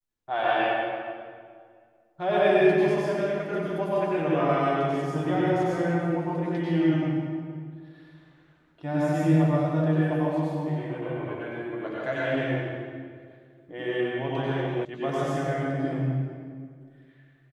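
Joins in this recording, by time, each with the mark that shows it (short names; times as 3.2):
14.85 sound cut off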